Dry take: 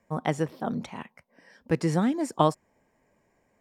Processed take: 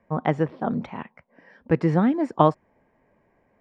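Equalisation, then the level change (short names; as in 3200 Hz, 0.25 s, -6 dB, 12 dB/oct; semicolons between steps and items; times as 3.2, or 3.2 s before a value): LPF 2200 Hz 12 dB/oct; +4.5 dB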